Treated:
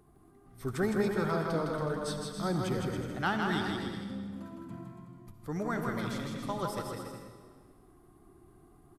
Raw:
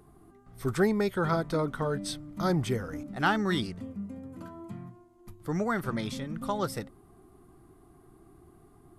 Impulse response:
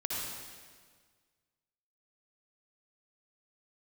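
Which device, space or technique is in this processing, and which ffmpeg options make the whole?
saturated reverb return: -filter_complex "[0:a]aecho=1:1:160|280|370|437.5|488.1:0.631|0.398|0.251|0.158|0.1,asplit=2[s0][s1];[1:a]atrim=start_sample=2205[s2];[s1][s2]afir=irnorm=-1:irlink=0,asoftclip=type=tanh:threshold=0.188,volume=0.376[s3];[s0][s3]amix=inputs=2:normalize=0,volume=0.422"

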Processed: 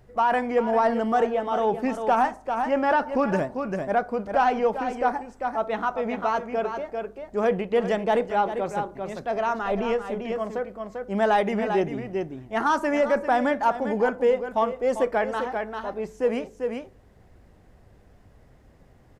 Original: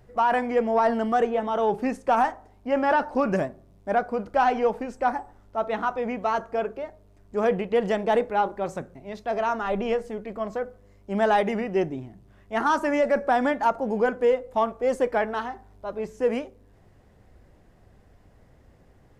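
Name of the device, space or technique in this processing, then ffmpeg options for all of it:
ducked delay: -filter_complex "[0:a]asplit=3[s0][s1][s2];[s1]adelay=395,volume=0.596[s3];[s2]apad=whole_len=863897[s4];[s3][s4]sidechaincompress=threshold=0.0562:ratio=8:attack=6.5:release=494[s5];[s0][s5]amix=inputs=2:normalize=0"

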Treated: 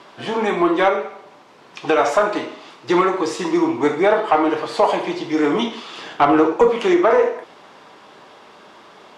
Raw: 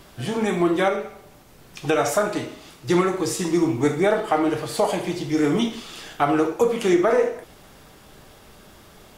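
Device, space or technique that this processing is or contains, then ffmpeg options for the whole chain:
intercom: -filter_complex "[0:a]asettb=1/sr,asplit=3[s0][s1][s2];[s0]atrim=end=5.984[s3];[s1]atrim=start=5.98:end=6.7,asetpts=PTS-STARTPTS,afade=t=in:d=0.004:c=qsin,afade=t=out:st=0.716:d=0.004:c=qsin,lowshelf=f=280:g=9[s4];[s2]atrim=start=6.696[s5];[s3][s4]acrossfade=d=0.004:c1=hsin:c2=qsin[s6];[s6][s5]acrossfade=d=0.004:c1=qsin:c2=hsin,highpass=300,lowpass=4200,equalizer=f=1000:t=o:w=0.41:g=7,asoftclip=type=tanh:threshold=0.355,volume=1.78"

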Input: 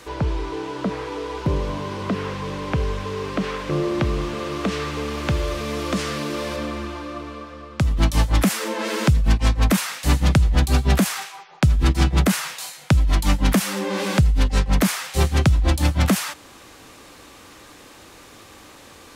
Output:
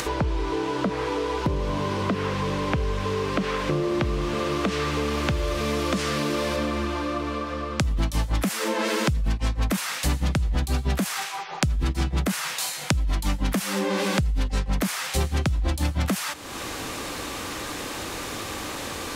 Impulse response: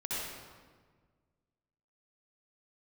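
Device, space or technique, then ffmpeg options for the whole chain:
upward and downward compression: -af "acompressor=mode=upward:threshold=0.0562:ratio=2.5,acompressor=threshold=0.0631:ratio=6,volume=1.41"

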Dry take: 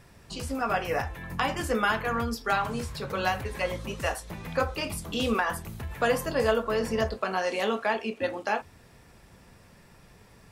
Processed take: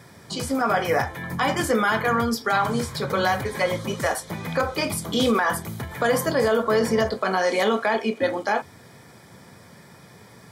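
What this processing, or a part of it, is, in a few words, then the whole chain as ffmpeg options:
PA system with an anti-feedback notch: -af "highpass=f=100:w=0.5412,highpass=f=100:w=1.3066,asuperstop=centerf=2700:order=12:qfactor=7.7,alimiter=limit=0.106:level=0:latency=1:release=32,volume=2.51"

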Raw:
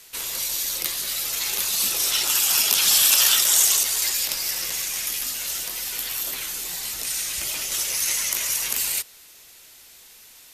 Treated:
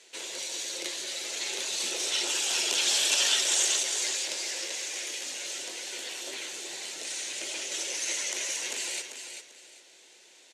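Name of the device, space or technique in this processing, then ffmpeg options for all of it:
television speaker: -filter_complex "[0:a]asettb=1/sr,asplit=3[s0][s1][s2];[s0]atrim=end=4.384[s3];[s1]atrim=start=4.38:end=5.28,asetpts=PTS-STARTPTS,afade=t=in:d=0.004:c=qsin,afade=t=out:st=0.896:d=0.004:c=qsin,highpass=240[s4];[s2]atrim=start=5.276[s5];[s3][s4]acrossfade=d=0.004:c1=hsin:c2=qsin[s6];[s6][s5]acrossfade=d=0.004:c1=qsin:c2=hsin,highpass=f=210:w=0.5412,highpass=f=210:w=1.3066,equalizer=f=220:t=q:w=4:g=-7,equalizer=f=360:t=q:w=4:g=8,equalizer=f=550:t=q:w=4:g=6,equalizer=f=1200:t=q:w=4:g=-9,equalizer=f=5100:t=q:w=4:g=-5,lowpass=f=7500:w=0.5412,lowpass=f=7500:w=1.3066,aecho=1:1:392|784|1176:0.398|0.0995|0.0249,volume=0.631"

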